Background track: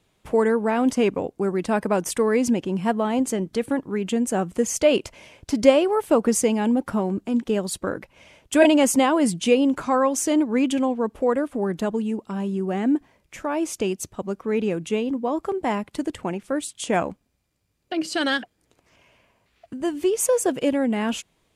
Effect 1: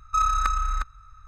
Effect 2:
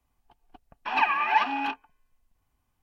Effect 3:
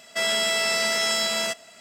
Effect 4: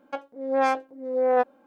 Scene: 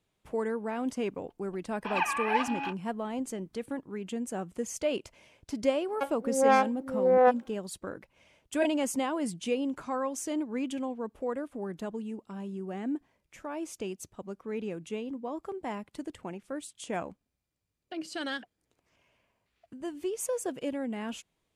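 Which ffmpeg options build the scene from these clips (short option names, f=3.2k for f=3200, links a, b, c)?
-filter_complex "[0:a]volume=-12dB[a];[2:a]atrim=end=2.82,asetpts=PTS-STARTPTS,volume=-6dB,afade=t=in:d=0.004:c=hsin,afade=t=out:st=2.816:d=0.004:c=hsin,adelay=990[b];[4:a]atrim=end=1.66,asetpts=PTS-STARTPTS,afade=t=in:d=0.004:c=hsin,afade=t=out:st=1.656:d=0.004:c=hsin,adelay=5880[c];[a][b][c]amix=inputs=3:normalize=0"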